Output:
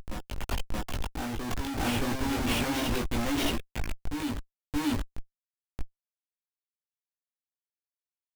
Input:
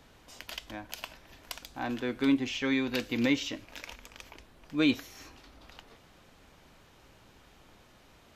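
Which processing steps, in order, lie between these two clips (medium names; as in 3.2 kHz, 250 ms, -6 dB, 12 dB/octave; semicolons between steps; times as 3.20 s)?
spectral noise reduction 14 dB; Schmitt trigger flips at -36.5 dBFS; chorus voices 6, 0.53 Hz, delay 19 ms, depth 2.1 ms; on a send: reverse echo 625 ms -4 dB; on the sum: trim +8.5 dB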